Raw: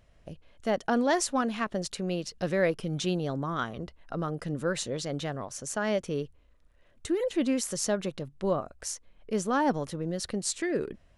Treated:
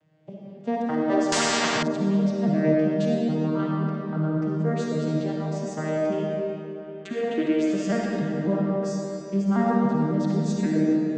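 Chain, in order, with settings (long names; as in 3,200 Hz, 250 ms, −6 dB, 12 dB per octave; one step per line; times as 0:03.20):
vocoder with an arpeggio as carrier major triad, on D#3, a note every 273 ms
0:06.12–0:08.00: flat-topped bell 2,000 Hz +9.5 dB
in parallel at −1 dB: downward compressor, threshold −38 dBFS, peak gain reduction 18 dB
on the sum: comb and all-pass reverb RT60 3.1 s, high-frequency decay 0.75×, pre-delay 15 ms, DRR −3.5 dB
0:01.32–0:01.83: every bin compressed towards the loudest bin 4 to 1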